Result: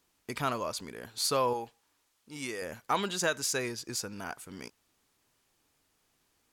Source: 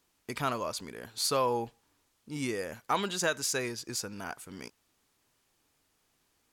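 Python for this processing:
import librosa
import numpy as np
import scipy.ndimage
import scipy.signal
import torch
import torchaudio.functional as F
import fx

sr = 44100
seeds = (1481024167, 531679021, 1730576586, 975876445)

y = fx.low_shelf(x, sr, hz=390.0, db=-10.5, at=(1.53, 2.62))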